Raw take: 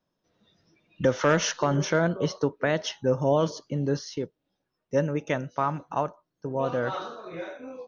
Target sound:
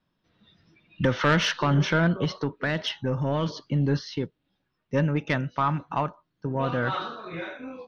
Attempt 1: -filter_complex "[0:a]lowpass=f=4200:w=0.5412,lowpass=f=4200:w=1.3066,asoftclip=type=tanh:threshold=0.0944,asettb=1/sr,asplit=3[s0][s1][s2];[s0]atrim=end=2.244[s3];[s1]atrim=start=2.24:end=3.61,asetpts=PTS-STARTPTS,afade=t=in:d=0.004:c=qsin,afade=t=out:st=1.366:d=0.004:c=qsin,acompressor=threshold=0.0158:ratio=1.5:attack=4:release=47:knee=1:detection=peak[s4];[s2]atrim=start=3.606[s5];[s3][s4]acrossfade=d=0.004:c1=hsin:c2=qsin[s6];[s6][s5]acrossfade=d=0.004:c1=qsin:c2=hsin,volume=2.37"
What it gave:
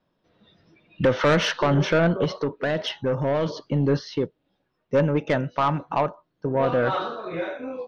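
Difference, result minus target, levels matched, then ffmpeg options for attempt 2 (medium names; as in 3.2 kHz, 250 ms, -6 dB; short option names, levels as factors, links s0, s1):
500 Hz band +4.5 dB
-filter_complex "[0:a]lowpass=f=4200:w=0.5412,lowpass=f=4200:w=1.3066,equalizer=f=540:t=o:w=1.6:g=-9.5,asoftclip=type=tanh:threshold=0.0944,asettb=1/sr,asplit=3[s0][s1][s2];[s0]atrim=end=2.244[s3];[s1]atrim=start=2.24:end=3.61,asetpts=PTS-STARTPTS,afade=t=in:d=0.004:c=qsin,afade=t=out:st=1.366:d=0.004:c=qsin,acompressor=threshold=0.0158:ratio=1.5:attack=4:release=47:knee=1:detection=peak[s4];[s2]atrim=start=3.606[s5];[s3][s4]acrossfade=d=0.004:c1=hsin:c2=qsin[s6];[s6][s5]acrossfade=d=0.004:c1=qsin:c2=hsin,volume=2.37"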